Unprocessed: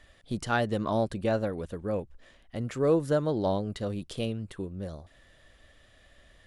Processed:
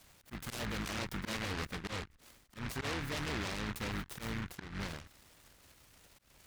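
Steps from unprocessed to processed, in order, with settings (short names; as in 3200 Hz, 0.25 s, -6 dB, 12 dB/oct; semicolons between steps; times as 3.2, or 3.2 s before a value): octaver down 2 oct, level +2 dB; high shelf 4000 Hz +4.5 dB; auto swell 0.168 s; HPF 110 Hz 6 dB/oct; limiter -29 dBFS, peak gain reduction 14 dB; high shelf 8500 Hz -11.5 dB; noise-modulated delay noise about 1500 Hz, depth 0.4 ms; gain -2 dB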